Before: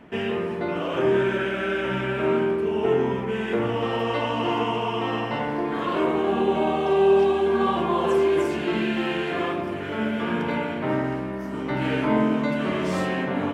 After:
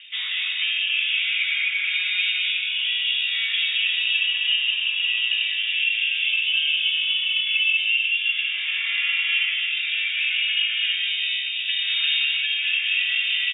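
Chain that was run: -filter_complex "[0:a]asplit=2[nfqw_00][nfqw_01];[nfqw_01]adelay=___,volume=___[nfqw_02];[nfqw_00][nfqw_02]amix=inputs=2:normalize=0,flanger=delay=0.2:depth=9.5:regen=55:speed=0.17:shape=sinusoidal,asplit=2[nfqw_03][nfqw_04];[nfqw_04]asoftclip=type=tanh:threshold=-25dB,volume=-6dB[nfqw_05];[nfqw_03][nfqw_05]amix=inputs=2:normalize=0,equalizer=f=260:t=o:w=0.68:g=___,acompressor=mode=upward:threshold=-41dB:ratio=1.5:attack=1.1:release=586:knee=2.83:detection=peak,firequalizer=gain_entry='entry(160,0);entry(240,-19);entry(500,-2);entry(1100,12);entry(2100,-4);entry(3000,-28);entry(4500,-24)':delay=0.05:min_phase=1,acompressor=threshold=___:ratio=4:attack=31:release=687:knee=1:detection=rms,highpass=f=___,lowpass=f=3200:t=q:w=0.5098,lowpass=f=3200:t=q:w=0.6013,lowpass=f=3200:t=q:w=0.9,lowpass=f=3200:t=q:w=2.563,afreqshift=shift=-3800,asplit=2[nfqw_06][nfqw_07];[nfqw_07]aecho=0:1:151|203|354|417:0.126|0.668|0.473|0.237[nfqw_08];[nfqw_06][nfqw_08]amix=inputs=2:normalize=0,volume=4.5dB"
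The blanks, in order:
20, -12dB, -5, -26dB, 92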